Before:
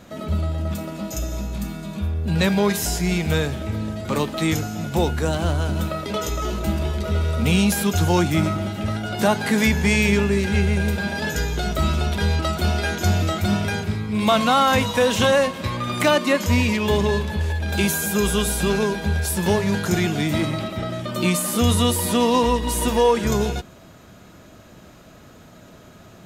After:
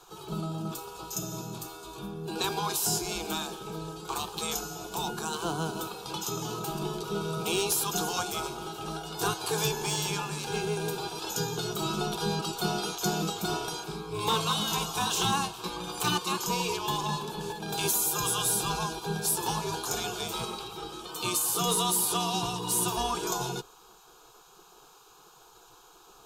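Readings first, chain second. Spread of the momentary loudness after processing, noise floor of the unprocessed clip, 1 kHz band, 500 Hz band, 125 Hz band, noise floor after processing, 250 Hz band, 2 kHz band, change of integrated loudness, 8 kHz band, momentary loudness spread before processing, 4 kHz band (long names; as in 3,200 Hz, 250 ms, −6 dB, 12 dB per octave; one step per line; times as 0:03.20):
11 LU, −46 dBFS, −6.5 dB, −12.0 dB, −14.5 dB, −56 dBFS, −14.5 dB, −12.5 dB, −9.0 dB, −1.0 dB, 9 LU, −4.0 dB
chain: gate on every frequency bin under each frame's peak −10 dB weak
phaser with its sweep stopped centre 390 Hz, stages 8
gain into a clipping stage and back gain 19.5 dB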